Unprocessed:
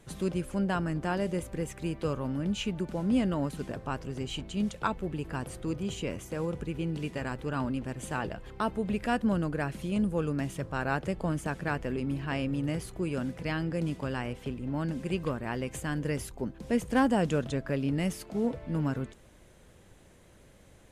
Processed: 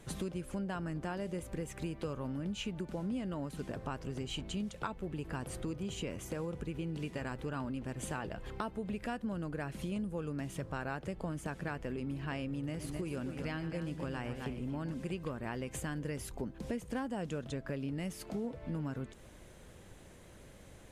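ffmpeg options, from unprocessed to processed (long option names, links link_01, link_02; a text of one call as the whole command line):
ffmpeg -i in.wav -filter_complex "[0:a]asettb=1/sr,asplit=3[link_01][link_02][link_03];[link_01]atrim=end=12.584[link_04];[link_02]atrim=start=12.58:end=14.94,asetpts=PTS-STARTPTS,afade=type=in:duration=0.004:curve=qsin,afade=type=out:start_time=2.356:duration=0.004:curve=qsin,aecho=1:1:116|260:0.237|0.355,atrim=end_sample=104076[link_05];[link_03]atrim=start=14.936[link_06];[link_04][link_05]acrossfade=duration=0.004:curve1=hsin:curve2=qsin[link_07];[link_07][link_06]acrossfade=duration=0.004:curve1=qsin:curve2=hsin,acompressor=threshold=-38dB:ratio=5,volume=2dB" out.wav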